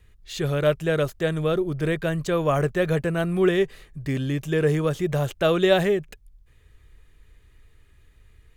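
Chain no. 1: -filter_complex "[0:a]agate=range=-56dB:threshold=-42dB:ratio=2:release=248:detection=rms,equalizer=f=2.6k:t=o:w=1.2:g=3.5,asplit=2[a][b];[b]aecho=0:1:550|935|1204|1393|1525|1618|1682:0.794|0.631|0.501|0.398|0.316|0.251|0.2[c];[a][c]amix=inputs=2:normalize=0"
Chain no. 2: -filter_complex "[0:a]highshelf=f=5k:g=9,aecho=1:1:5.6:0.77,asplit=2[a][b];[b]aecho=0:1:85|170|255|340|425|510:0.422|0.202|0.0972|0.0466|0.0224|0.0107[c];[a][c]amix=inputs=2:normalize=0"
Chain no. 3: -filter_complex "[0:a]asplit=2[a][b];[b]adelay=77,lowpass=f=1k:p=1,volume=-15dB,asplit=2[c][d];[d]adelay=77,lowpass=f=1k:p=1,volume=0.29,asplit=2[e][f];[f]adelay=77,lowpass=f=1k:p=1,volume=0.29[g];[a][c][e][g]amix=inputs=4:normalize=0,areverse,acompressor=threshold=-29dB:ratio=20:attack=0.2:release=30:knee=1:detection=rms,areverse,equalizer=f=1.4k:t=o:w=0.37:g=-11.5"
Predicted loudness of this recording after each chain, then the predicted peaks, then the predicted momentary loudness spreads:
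-20.0, -19.5, -35.5 LUFS; -3.0, -2.5, -27.0 dBFS; 5, 10, 3 LU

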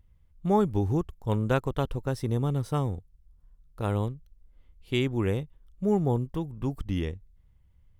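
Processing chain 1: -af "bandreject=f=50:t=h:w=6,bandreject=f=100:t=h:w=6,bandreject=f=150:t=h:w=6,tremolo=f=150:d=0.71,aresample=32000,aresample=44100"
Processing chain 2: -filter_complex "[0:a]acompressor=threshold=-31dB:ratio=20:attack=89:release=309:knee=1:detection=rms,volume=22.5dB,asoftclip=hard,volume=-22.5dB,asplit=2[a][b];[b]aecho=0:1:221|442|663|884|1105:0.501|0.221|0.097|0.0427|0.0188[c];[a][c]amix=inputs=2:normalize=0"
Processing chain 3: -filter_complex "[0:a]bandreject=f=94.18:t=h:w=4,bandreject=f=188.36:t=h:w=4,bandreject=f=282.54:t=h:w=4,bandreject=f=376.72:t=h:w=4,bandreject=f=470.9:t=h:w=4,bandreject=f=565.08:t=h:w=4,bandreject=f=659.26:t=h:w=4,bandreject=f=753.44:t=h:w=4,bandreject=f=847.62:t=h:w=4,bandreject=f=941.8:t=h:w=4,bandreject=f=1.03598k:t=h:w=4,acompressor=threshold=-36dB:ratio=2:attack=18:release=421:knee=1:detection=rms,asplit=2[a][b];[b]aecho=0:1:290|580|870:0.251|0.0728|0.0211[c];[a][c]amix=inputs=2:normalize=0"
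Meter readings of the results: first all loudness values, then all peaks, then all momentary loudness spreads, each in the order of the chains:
-33.0, -35.0, -37.0 LUFS; -12.0, -19.0, -18.5 dBFS; 10, 14, 15 LU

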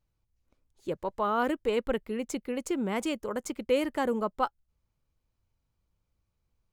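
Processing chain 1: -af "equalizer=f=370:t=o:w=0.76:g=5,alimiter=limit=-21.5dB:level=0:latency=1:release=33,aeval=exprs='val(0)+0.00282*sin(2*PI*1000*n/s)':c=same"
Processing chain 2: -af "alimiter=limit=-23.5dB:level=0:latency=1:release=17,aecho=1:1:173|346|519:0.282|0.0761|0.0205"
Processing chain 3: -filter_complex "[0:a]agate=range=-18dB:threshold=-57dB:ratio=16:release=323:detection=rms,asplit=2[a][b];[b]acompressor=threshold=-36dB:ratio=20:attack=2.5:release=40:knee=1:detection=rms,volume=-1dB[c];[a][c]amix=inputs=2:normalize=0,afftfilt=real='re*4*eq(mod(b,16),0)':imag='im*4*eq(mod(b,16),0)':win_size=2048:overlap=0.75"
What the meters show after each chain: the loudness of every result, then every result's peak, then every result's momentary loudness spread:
-32.0, -34.0, -33.5 LUFS; -21.0, -21.5, -12.0 dBFS; 5, 6, 13 LU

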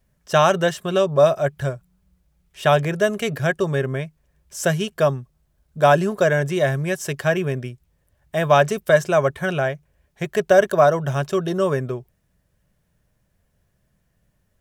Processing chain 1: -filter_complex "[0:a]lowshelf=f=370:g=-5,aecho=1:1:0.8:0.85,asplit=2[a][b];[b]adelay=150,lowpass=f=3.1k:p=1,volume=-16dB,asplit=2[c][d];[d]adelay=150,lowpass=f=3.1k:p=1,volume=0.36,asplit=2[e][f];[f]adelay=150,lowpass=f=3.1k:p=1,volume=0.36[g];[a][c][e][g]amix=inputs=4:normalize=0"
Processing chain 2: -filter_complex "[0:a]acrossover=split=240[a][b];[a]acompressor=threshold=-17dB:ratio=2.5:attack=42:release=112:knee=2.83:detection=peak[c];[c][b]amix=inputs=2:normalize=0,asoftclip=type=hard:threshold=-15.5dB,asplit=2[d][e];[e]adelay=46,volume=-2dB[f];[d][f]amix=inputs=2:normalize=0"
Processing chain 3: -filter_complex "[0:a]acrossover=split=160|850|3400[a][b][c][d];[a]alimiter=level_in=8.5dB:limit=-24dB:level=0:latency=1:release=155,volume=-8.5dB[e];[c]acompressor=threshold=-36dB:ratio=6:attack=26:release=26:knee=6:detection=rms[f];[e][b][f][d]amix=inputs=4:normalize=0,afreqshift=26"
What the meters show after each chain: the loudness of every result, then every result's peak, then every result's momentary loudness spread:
-22.5, -21.0, -22.0 LUFS; -3.5, -10.5, -4.0 dBFS; 12, 9, 13 LU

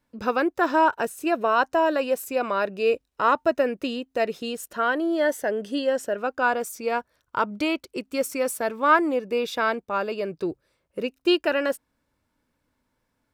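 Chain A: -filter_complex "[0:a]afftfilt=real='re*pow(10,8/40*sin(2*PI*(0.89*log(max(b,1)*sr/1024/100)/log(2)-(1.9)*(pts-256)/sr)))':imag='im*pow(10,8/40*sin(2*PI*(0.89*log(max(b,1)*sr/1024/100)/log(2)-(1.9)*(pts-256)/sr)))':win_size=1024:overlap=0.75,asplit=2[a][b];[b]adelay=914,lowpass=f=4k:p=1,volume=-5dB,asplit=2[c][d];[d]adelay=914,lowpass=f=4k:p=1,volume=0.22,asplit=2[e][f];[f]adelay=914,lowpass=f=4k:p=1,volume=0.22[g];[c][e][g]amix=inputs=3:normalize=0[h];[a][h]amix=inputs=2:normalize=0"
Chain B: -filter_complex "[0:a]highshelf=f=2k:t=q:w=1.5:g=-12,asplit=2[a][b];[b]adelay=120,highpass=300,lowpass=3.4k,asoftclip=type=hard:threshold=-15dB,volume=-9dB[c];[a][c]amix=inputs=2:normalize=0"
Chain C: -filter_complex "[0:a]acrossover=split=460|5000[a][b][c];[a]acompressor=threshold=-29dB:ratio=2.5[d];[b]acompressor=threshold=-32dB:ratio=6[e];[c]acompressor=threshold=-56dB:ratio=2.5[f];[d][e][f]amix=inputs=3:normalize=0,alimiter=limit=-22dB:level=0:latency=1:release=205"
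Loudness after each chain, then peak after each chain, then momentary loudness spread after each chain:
-23.0, -23.5, -33.0 LUFS; -5.5, -5.0, -22.0 dBFS; 9, 11, 5 LU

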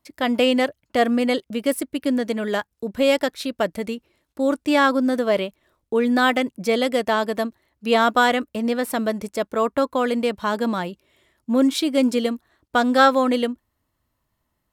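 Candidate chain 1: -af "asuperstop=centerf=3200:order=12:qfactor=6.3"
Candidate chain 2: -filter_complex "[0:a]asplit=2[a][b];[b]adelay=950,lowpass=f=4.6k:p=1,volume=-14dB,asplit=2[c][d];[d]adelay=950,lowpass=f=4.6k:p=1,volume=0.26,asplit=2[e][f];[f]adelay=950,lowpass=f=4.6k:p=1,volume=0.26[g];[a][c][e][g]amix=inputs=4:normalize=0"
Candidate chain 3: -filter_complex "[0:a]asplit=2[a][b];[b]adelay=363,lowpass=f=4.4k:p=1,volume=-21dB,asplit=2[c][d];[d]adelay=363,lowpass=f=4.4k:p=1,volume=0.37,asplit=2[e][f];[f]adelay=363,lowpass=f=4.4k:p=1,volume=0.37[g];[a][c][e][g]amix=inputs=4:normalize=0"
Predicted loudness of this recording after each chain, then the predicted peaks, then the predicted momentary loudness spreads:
-21.5, -21.5, -21.5 LUFS; -2.0, -2.0, -2.5 dBFS; 10, 13, 10 LU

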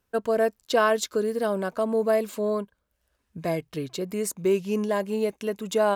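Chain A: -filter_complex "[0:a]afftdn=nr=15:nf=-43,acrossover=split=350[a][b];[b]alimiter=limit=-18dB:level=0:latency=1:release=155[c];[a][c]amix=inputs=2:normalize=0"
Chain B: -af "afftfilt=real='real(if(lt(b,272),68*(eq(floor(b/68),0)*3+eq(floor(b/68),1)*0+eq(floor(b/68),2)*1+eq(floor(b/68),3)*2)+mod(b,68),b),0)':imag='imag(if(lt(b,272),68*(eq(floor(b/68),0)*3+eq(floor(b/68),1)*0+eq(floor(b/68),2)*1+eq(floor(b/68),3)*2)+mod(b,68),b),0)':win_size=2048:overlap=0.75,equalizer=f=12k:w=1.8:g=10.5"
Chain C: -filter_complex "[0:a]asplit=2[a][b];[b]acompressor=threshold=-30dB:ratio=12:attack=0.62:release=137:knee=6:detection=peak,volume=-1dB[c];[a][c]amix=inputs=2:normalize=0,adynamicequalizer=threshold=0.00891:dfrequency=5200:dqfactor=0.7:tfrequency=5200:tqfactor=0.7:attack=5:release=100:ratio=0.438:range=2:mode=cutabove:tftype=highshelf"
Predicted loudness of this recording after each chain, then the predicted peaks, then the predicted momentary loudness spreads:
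-27.5, -23.5, -24.5 LUFS; -13.5, -8.0, -8.5 dBFS; 7, 9, 7 LU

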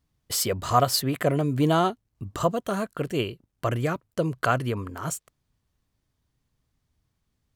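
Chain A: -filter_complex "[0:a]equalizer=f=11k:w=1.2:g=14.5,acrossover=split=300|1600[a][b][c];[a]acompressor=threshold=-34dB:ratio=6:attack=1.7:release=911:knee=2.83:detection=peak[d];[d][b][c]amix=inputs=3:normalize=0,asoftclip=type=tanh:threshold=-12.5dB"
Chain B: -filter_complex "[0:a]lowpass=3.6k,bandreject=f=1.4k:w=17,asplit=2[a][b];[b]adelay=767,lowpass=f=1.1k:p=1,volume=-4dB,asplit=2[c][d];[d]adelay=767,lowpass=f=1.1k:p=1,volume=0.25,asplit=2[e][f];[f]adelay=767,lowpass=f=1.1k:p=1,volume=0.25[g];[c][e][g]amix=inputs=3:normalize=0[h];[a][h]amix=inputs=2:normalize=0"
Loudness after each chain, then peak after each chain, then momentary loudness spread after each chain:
-26.5, -26.0 LUFS; -12.5, -6.5 dBFS; 12, 15 LU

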